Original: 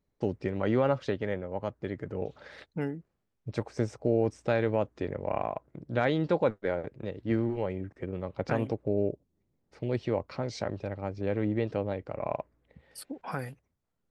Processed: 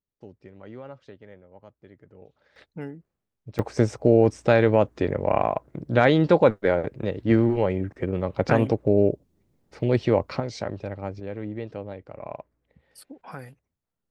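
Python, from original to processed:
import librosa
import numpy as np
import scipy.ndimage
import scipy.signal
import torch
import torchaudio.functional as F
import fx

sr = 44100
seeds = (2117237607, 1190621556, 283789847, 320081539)

y = fx.gain(x, sr, db=fx.steps((0.0, -15.0), (2.56, -3.0), (3.59, 9.0), (10.4, 2.5), (11.2, -4.0)))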